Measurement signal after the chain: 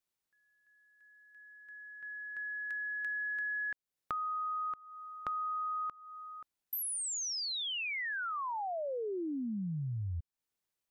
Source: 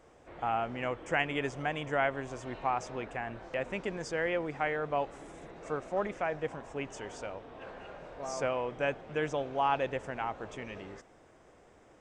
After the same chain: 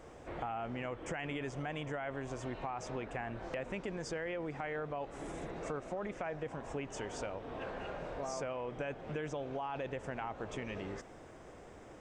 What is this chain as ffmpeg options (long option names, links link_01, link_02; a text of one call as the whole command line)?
ffmpeg -i in.wav -af "lowshelf=frequency=360:gain=3.5,alimiter=level_in=1.5dB:limit=-24dB:level=0:latency=1:release=11,volume=-1.5dB,acompressor=threshold=-43dB:ratio=4,volume=5dB" out.wav